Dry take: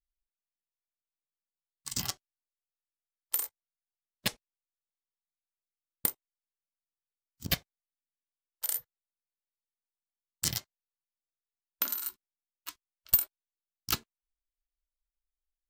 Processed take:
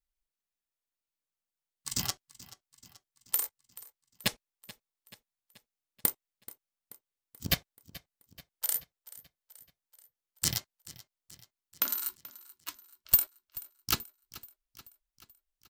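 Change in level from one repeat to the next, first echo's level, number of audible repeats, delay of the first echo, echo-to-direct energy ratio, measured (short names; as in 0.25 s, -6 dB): -5.0 dB, -19.0 dB, 4, 0.432 s, -17.5 dB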